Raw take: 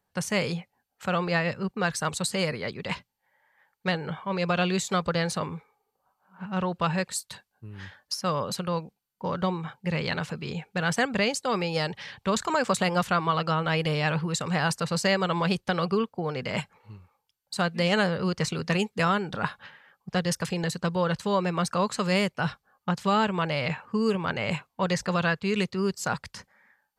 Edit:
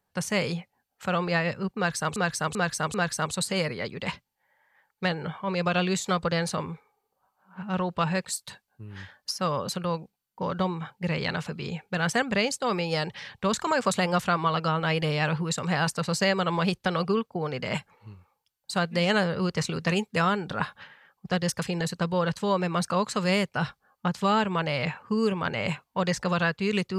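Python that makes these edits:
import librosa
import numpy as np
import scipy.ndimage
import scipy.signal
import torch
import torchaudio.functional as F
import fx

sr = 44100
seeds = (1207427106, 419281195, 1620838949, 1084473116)

y = fx.edit(x, sr, fx.repeat(start_s=1.77, length_s=0.39, count=4), tone=tone)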